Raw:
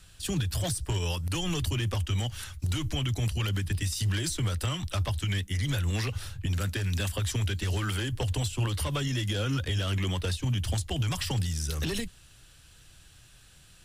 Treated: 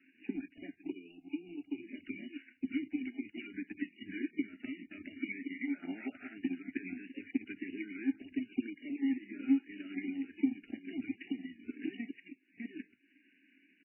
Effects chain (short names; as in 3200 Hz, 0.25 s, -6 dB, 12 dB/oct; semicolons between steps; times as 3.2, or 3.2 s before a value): reverse delay 0.616 s, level -12.5 dB; HPF 170 Hz 24 dB/oct; limiter -31.5 dBFS, peak gain reduction 11.5 dB; vowel filter i; downsampling 8000 Hz; transient shaper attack +9 dB, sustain -10 dB; 0.81–1.89 fixed phaser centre 350 Hz, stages 8; 5.74–6.35 band shelf 880 Hz +14.5 dB; fixed phaser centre 740 Hz, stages 8; 3.11–3.54 low shelf 240 Hz -7.5 dB; gain +11.5 dB; MP3 8 kbps 11025 Hz